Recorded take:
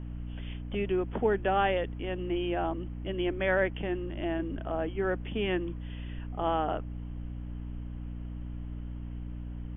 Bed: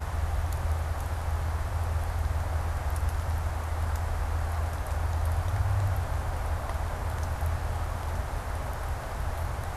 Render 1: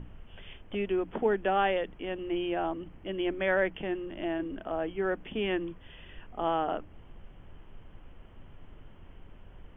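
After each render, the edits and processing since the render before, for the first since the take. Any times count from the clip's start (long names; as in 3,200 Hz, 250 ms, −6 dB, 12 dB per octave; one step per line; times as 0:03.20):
mains-hum notches 60/120/180/240/300 Hz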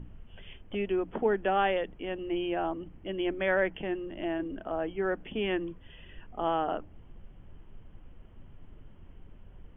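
broadband denoise 6 dB, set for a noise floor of −52 dBFS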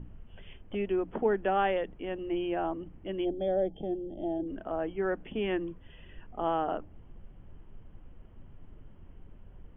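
0:03.25–0:04.48: gain on a spectral selection 870–3,100 Hz −23 dB
high-shelf EQ 2,600 Hz −7.5 dB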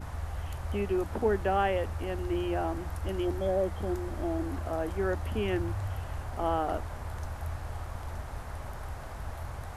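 mix in bed −7 dB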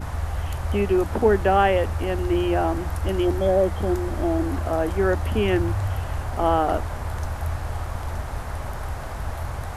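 level +9 dB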